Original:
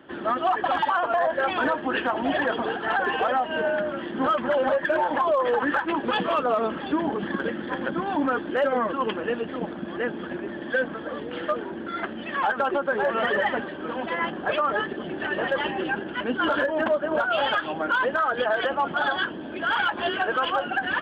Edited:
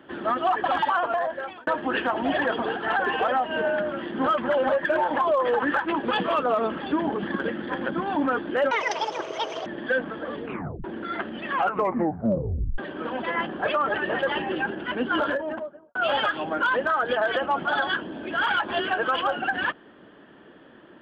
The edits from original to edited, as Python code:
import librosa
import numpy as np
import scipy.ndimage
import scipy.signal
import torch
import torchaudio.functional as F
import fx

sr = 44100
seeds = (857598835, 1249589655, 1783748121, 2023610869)

y = fx.studio_fade_out(x, sr, start_s=16.37, length_s=0.87)
y = fx.edit(y, sr, fx.fade_out_span(start_s=1.0, length_s=0.67),
    fx.speed_span(start_s=8.71, length_s=1.79, speed=1.88),
    fx.tape_stop(start_s=11.28, length_s=0.4),
    fx.tape_stop(start_s=12.37, length_s=1.25),
    fx.cut(start_s=14.78, length_s=0.45), tone=tone)